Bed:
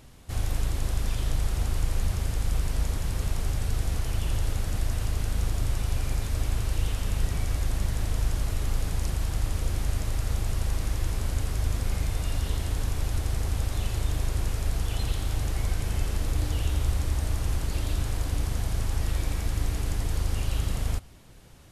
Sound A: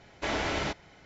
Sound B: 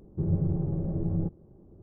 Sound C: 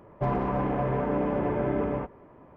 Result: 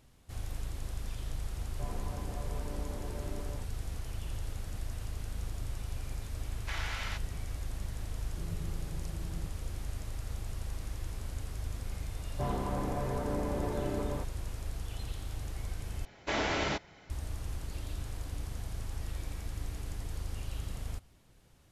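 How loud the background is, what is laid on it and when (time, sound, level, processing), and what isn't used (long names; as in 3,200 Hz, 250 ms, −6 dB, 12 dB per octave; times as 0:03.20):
bed −11 dB
0:01.58: mix in C −17.5 dB
0:06.45: mix in A −5.5 dB + Chebyshev high-pass filter 1,300 Hz
0:08.19: mix in B −16 dB
0:12.18: mix in C −8 dB
0:16.05: overwrite with A −1 dB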